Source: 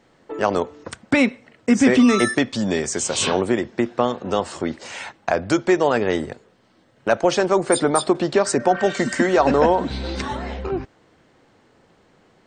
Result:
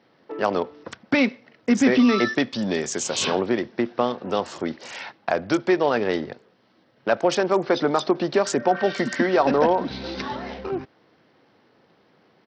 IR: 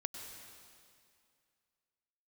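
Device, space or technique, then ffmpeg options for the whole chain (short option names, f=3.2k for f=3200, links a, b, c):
Bluetooth headset: -af "highpass=130,aresample=16000,aresample=44100,volume=-2.5dB" -ar 44100 -c:a sbc -b:a 64k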